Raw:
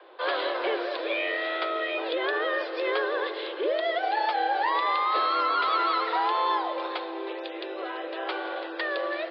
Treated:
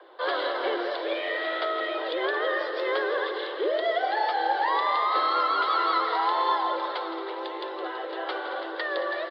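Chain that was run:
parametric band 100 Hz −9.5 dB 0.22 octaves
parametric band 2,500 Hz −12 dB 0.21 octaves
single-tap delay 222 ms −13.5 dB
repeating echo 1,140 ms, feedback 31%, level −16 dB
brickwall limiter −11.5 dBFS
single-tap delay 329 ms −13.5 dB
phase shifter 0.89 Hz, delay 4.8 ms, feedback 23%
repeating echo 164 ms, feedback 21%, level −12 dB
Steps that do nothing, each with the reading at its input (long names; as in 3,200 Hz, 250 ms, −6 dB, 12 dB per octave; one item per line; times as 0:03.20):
parametric band 100 Hz: nothing at its input below 290 Hz
brickwall limiter −11.5 dBFS: peak of its input −14.0 dBFS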